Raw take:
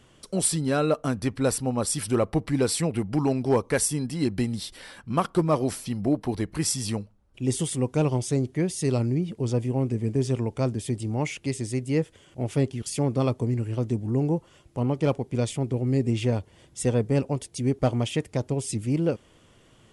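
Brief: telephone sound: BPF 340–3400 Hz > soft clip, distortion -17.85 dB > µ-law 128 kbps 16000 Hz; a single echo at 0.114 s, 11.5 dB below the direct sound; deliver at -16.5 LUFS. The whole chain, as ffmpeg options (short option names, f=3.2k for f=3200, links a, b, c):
-af "highpass=340,lowpass=3.4k,aecho=1:1:114:0.266,asoftclip=threshold=-17.5dB,volume=16dB" -ar 16000 -c:a pcm_mulaw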